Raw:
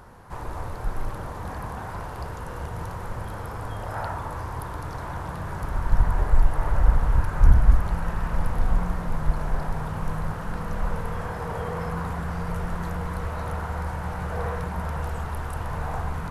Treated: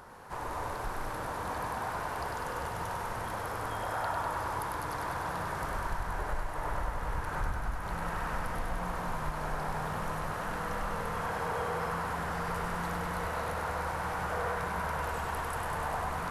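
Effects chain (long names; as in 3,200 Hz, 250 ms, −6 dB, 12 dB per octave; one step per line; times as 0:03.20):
low-shelf EQ 210 Hz −11.5 dB
downward compressor, threshold −30 dBFS, peak gain reduction 12 dB
on a send: feedback echo with a high-pass in the loop 99 ms, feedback 80%, high-pass 420 Hz, level −4.5 dB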